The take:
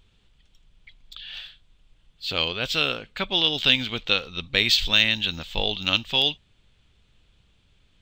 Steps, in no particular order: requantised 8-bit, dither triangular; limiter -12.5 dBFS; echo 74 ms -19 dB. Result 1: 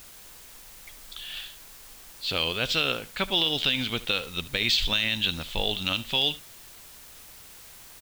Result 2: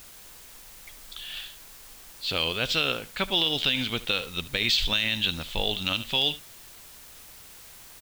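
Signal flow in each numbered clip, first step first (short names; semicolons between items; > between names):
limiter > echo > requantised; echo > limiter > requantised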